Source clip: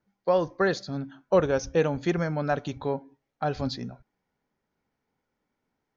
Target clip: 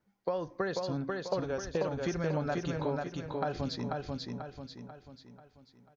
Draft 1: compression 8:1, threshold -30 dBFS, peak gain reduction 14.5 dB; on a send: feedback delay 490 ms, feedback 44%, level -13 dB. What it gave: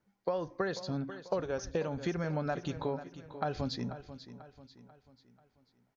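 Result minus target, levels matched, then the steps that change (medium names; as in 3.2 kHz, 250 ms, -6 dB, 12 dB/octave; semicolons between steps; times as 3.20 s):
echo-to-direct -10 dB
change: feedback delay 490 ms, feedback 44%, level -3 dB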